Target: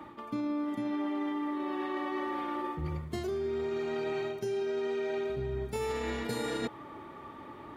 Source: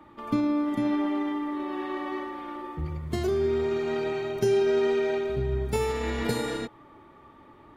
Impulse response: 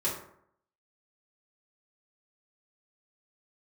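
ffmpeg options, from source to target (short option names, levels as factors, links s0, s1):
-af "highpass=f=100:p=1,areverse,acompressor=threshold=0.0141:ratio=10,areverse,volume=2"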